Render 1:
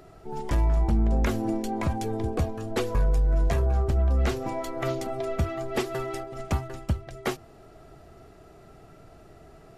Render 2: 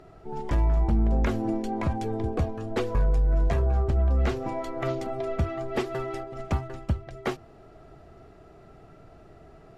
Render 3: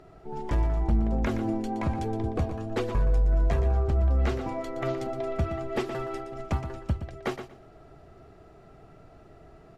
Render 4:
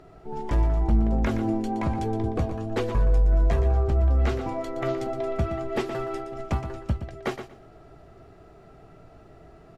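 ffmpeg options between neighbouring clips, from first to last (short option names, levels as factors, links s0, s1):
-af "aemphasis=mode=reproduction:type=50kf"
-af "aecho=1:1:119|238|357:0.316|0.0601|0.0114,volume=0.841"
-filter_complex "[0:a]asplit=2[s0][s1];[s1]adelay=18,volume=0.237[s2];[s0][s2]amix=inputs=2:normalize=0,volume=1.19"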